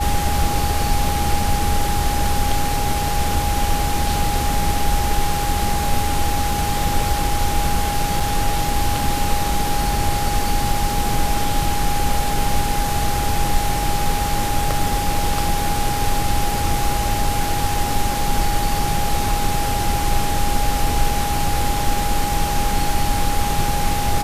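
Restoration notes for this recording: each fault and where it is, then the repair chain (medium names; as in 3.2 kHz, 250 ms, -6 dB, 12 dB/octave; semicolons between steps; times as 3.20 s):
whine 820 Hz -23 dBFS
8.20 s: dropout 3.8 ms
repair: band-stop 820 Hz, Q 30; interpolate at 8.20 s, 3.8 ms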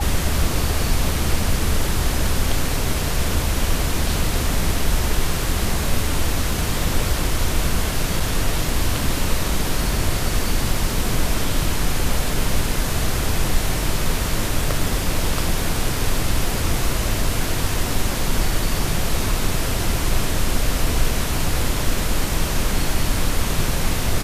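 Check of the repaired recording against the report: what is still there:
nothing left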